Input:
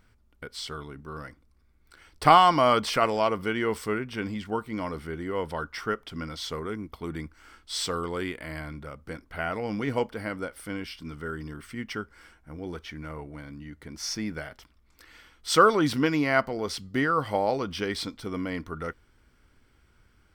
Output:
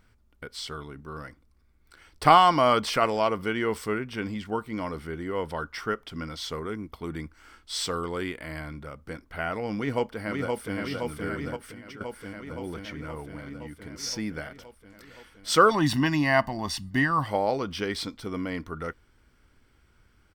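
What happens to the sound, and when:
9.76–10.77 s: echo throw 520 ms, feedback 75%, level -3 dB
11.56–12.01 s: compression 12:1, threshold -39 dBFS
15.71–17.26 s: comb 1.1 ms, depth 91%

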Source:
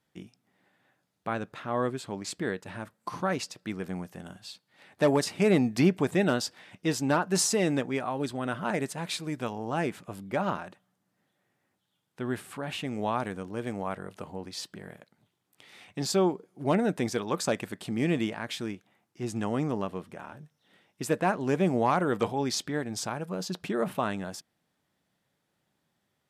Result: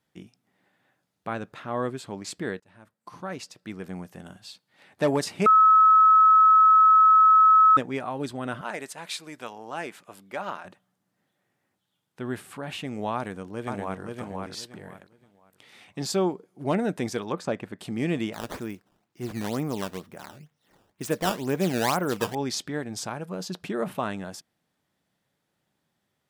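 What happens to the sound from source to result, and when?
2.60–4.13 s: fade in, from -21 dB
5.46–7.77 s: bleep 1.29 kHz -12.5 dBFS
8.61–10.65 s: high-pass 760 Hz 6 dB/octave
13.15–14.02 s: echo throw 520 ms, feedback 25%, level -3.5 dB
17.32–17.79 s: low-pass 1.7 kHz 6 dB/octave
18.33–22.35 s: decimation with a swept rate 12×, swing 160% 2.1 Hz

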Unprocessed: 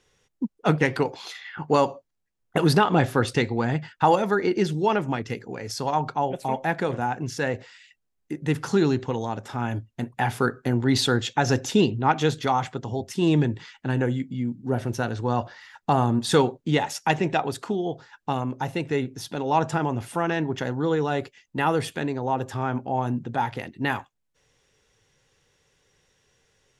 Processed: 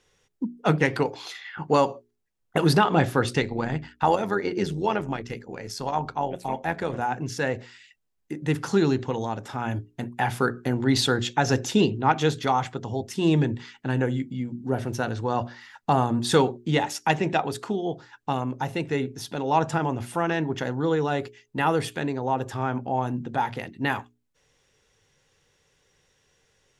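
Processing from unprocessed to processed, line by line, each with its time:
3.40–6.94 s: AM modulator 90 Hz, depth 40%
whole clip: hum notches 60/120/180/240/300/360/420 Hz

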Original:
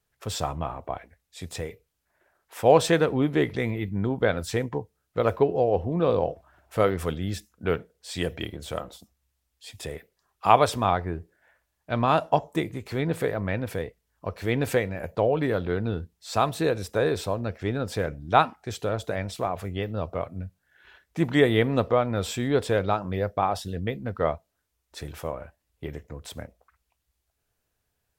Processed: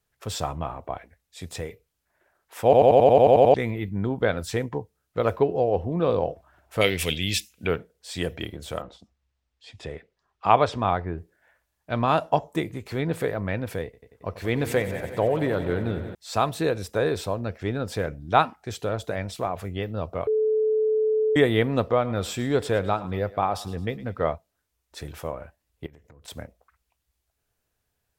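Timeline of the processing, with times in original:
2.64 s: stutter in place 0.09 s, 10 plays
6.81–7.67 s: resonant high shelf 1.8 kHz +11.5 dB, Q 3
8.82–11.18 s: distance through air 120 m
13.84–16.15 s: multi-head delay 91 ms, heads first and second, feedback 72%, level -15.5 dB
20.27–21.36 s: bleep 434 Hz -19 dBFS
21.93–24.33 s: thinning echo 109 ms, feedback 45%, level -17 dB
25.86–26.28 s: compression 20:1, threshold -46 dBFS

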